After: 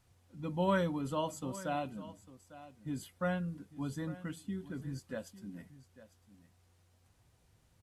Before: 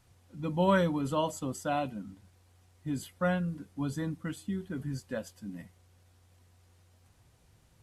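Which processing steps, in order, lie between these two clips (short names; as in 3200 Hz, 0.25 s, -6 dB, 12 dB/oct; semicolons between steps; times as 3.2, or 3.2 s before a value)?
echo 0.851 s -16.5 dB; gain -5 dB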